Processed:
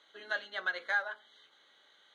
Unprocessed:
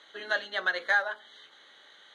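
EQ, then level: notch 1800 Hz, Q 14; dynamic EQ 1800 Hz, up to +4 dB, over -39 dBFS, Q 0.89; -8.5 dB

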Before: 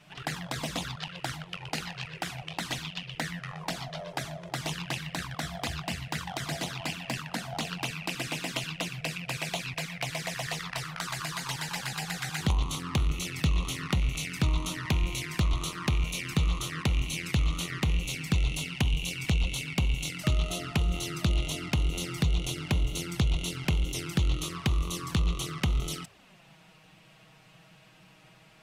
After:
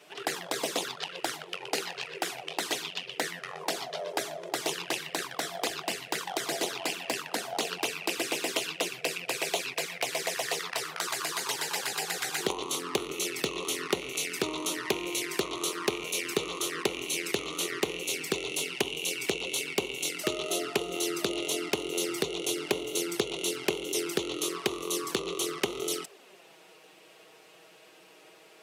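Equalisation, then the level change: resonant high-pass 400 Hz, resonance Q 4.9; high shelf 5300 Hz +8 dB; 0.0 dB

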